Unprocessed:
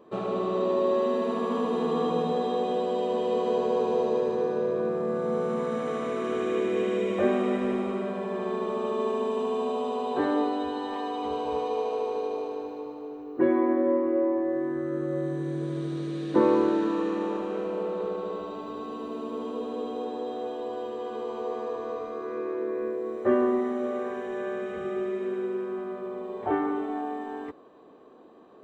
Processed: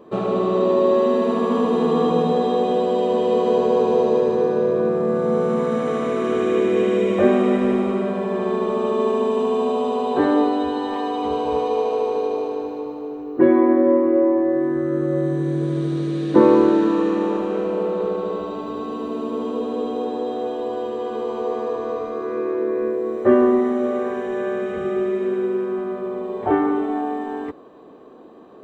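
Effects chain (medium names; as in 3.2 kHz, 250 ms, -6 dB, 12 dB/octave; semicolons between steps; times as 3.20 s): bass shelf 450 Hz +4 dB; trim +6 dB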